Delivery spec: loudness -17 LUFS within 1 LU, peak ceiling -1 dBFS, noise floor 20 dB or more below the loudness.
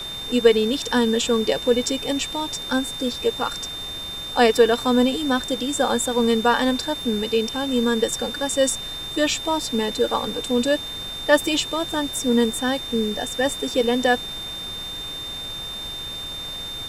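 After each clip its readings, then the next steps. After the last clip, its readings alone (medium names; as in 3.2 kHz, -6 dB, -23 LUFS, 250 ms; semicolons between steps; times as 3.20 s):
steady tone 3.6 kHz; tone level -30 dBFS; noise floor -32 dBFS; noise floor target -42 dBFS; loudness -22.0 LUFS; peak level -2.5 dBFS; loudness target -17.0 LUFS
-> band-stop 3.6 kHz, Q 30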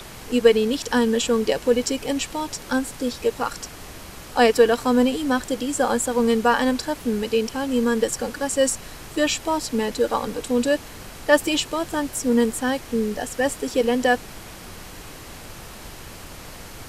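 steady tone not found; noise floor -40 dBFS; noise floor target -42 dBFS
-> noise print and reduce 6 dB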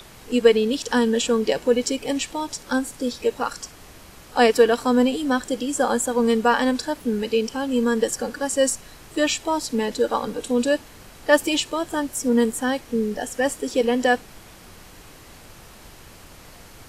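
noise floor -46 dBFS; loudness -22.0 LUFS; peak level -2.5 dBFS; loudness target -17.0 LUFS
-> trim +5 dB; peak limiter -1 dBFS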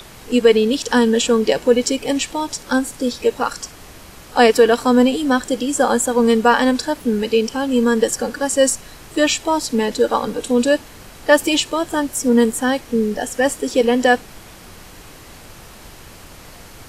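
loudness -17.5 LUFS; peak level -1.0 dBFS; noise floor -41 dBFS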